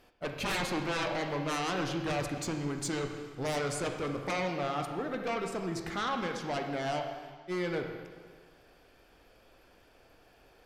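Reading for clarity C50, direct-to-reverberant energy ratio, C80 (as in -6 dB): 5.5 dB, 4.0 dB, 7.0 dB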